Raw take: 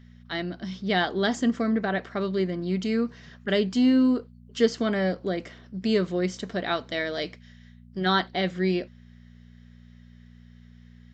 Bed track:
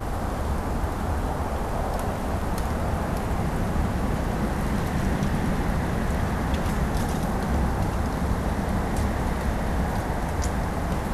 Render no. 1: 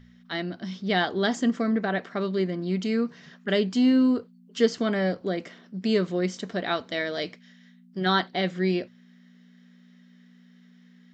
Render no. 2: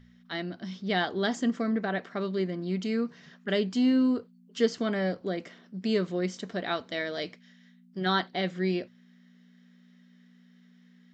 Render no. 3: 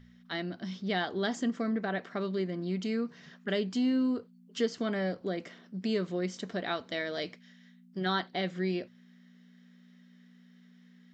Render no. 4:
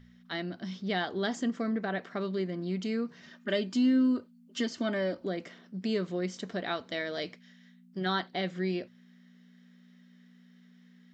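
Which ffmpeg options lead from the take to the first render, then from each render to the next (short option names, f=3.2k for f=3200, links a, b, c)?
-af "bandreject=f=60:t=h:w=4,bandreject=f=120:t=h:w=4"
-af "volume=-3.5dB"
-af "acompressor=threshold=-33dB:ratio=1.5"
-filter_complex "[0:a]asettb=1/sr,asplit=3[a][b][c];[a]atrim=end=3.224[d];[b]atrim=start=3.22:end=5.26,asetpts=PTS-STARTPTS,afade=t=in:d=0.004:c=qsin,afade=t=out:st=2.036:d=0.004:c=qsin,aecho=1:1:3.3:0.65,atrim=end_sample=89964[e];[c]atrim=start=5.256[f];[d][e]acrossfade=d=0.004:c1=hsin:c2=qsin[g];[g][f]acrossfade=d=0.004:c1=qsin:c2=hsin"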